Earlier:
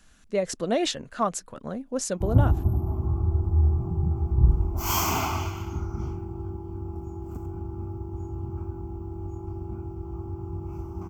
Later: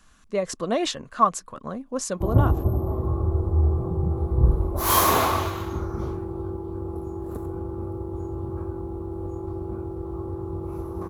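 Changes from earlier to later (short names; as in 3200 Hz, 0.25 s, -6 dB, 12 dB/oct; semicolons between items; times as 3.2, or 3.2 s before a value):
background: remove fixed phaser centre 2600 Hz, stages 8; master: add bell 1100 Hz +11.5 dB 0.29 oct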